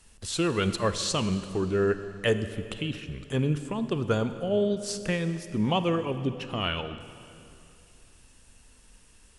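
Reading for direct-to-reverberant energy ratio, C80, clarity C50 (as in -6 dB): 10.5 dB, 11.5 dB, 11.0 dB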